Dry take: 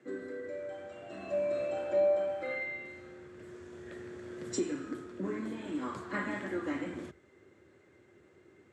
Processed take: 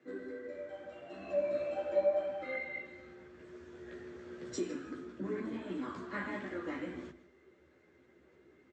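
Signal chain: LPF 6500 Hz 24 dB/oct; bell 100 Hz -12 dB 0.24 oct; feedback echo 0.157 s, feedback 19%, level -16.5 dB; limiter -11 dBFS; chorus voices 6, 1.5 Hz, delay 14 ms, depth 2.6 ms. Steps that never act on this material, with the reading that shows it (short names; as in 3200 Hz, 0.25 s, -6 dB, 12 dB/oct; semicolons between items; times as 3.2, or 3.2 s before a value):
limiter -11 dBFS: input peak -20.0 dBFS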